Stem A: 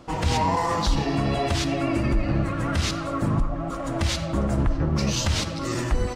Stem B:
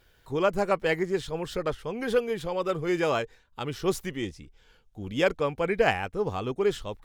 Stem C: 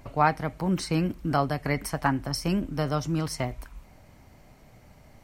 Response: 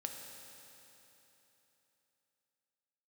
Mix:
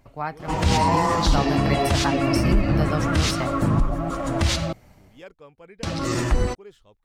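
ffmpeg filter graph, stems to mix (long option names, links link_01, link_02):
-filter_complex "[0:a]adelay=400,volume=3dB,asplit=3[link_01][link_02][link_03];[link_01]atrim=end=4.73,asetpts=PTS-STARTPTS,afade=type=out:start_time=4.726:duration=0.004:curve=hsin[link_04];[link_02]atrim=start=4.73:end=5.83,asetpts=PTS-STARTPTS,volume=0[link_05];[link_03]atrim=start=5.83,asetpts=PTS-STARTPTS,afade=type=in:duration=0.004:curve=hsin[link_06];[link_04][link_05][link_06]concat=n=3:v=0:a=1[link_07];[1:a]volume=-19.5dB[link_08];[2:a]dynaudnorm=framelen=490:gausssize=3:maxgain=10dB,volume=-8dB[link_09];[link_07][link_08][link_09]amix=inputs=3:normalize=0"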